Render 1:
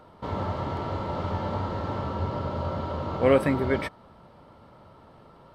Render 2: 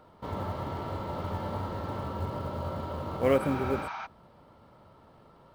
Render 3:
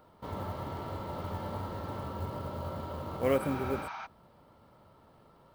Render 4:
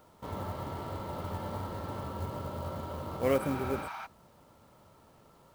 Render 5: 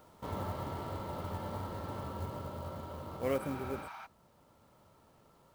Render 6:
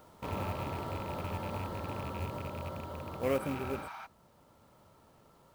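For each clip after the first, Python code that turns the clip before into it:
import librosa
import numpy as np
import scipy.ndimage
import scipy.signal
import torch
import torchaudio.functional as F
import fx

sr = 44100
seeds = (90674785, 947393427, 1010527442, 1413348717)

y1 = fx.quant_float(x, sr, bits=4)
y1 = fx.spec_repair(y1, sr, seeds[0], start_s=3.43, length_s=0.61, low_hz=640.0, high_hz=6500.0, source='before')
y1 = y1 * 10.0 ** (-4.5 / 20.0)
y2 = fx.high_shelf(y1, sr, hz=10000.0, db=10.0)
y2 = y2 * 10.0 ** (-3.5 / 20.0)
y3 = fx.quant_companded(y2, sr, bits=6)
y4 = fx.rider(y3, sr, range_db=10, speed_s=2.0)
y4 = y4 * 10.0 ** (-5.0 / 20.0)
y5 = fx.rattle_buzz(y4, sr, strikes_db=-41.0, level_db=-38.0)
y5 = y5 * 10.0 ** (2.0 / 20.0)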